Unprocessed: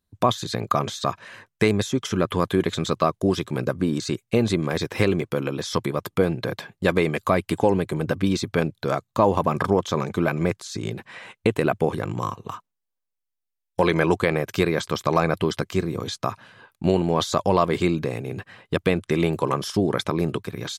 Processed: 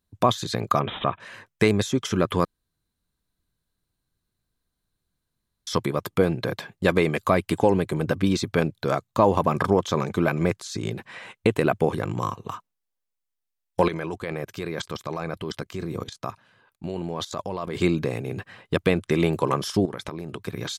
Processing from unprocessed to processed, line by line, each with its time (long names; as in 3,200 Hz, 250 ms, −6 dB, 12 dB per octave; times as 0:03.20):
0:00.80–0:01.20: bad sample-rate conversion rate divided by 6×, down none, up filtered
0:02.45–0:05.67: fill with room tone
0:13.88–0:17.77: output level in coarse steps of 15 dB
0:19.85–0:20.45: downward compressor 8 to 1, threshold −29 dBFS